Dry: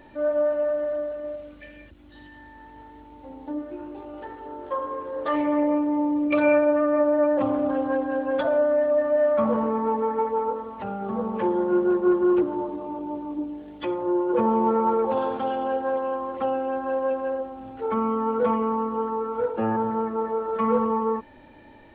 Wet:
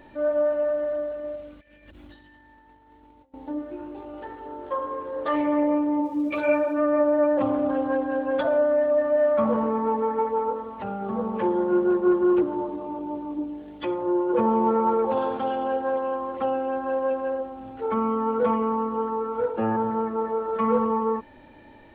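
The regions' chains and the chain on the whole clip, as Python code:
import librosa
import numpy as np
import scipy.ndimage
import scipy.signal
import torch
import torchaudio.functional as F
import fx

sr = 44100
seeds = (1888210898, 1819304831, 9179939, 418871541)

y = fx.chain(x, sr, fx.hum_notches(base_hz=60, count=8),
    fx.over_compress(threshold_db=-51.0, ratio=-0.5), at=(1.6, 3.34))
y = fx.bass_treble(y, sr, bass_db=0, treble_db=7, at=(6.0, 6.77), fade=0.02)
y = fx.dmg_crackle(y, sr, seeds[0], per_s=180.0, level_db=-43.0, at=(6.0, 6.77), fade=0.02)
y = fx.ensemble(y, sr, at=(6.0, 6.77), fade=0.02)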